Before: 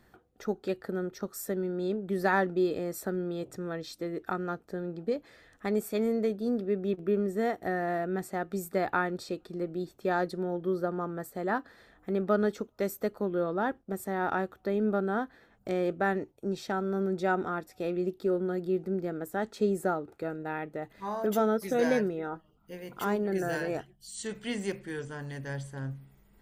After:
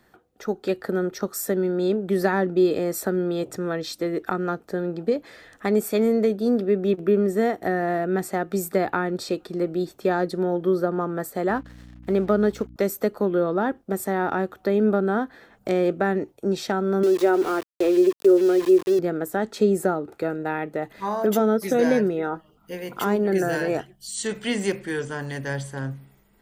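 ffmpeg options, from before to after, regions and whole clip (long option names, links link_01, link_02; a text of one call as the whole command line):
ffmpeg -i in.wav -filter_complex "[0:a]asettb=1/sr,asplit=3[link_01][link_02][link_03];[link_01]atrim=end=11.494[link_04];[link_02]atrim=start=11.49:end=12.76,asetpts=PTS-STARTPTS,afade=type=in:duration=0.004:curve=qsin,afade=type=out:start_time=1.266:duration=0.004:curve=qsin,aeval=exprs='sgn(val(0))*max(abs(val(0))-0.00141,0)':channel_layout=same,aeval=exprs='val(0)+0.00398*(sin(2*PI*60*n/s)+sin(2*PI*2*60*n/s)/2+sin(2*PI*3*60*n/s)/3+sin(2*PI*4*60*n/s)/4+sin(2*PI*5*60*n/s)/5)':channel_layout=same[link_05];[link_03]atrim=start=12.756[link_06];[link_04][link_05]acrossfade=duration=0.004:curve1=hsin:curve2=qsin[link_07];[link_07][link_06]acrossfade=duration=0.004:curve1=qsin:curve2=hsin,asettb=1/sr,asplit=3[link_08][link_09][link_10];[link_08]atrim=end=17.034[link_11];[link_09]atrim=start=17.03:end=18.99,asetpts=PTS-STARTPTS,afade=type=in:duration=0.004:curve=qsin,afade=type=out:start_time=1.956:duration=0.004:curve=qsin,lowshelf=frequency=270:width_type=q:width=3:gain=-7.5,aeval=exprs='val(0)*gte(abs(val(0)),0.0126)':channel_layout=same[link_12];[link_10]atrim=start=18.986[link_13];[link_11][link_12]acrossfade=duration=0.004:curve1=hsin:curve2=qsin[link_14];[link_14][link_13]acrossfade=duration=0.004:curve1=qsin:curve2=hsin,dynaudnorm=framelen=130:gausssize=9:maxgain=6.5dB,lowshelf=frequency=140:gain=-8.5,acrossover=split=420[link_15][link_16];[link_16]acompressor=threshold=-29dB:ratio=3[link_17];[link_15][link_17]amix=inputs=2:normalize=0,volume=4dB" out.wav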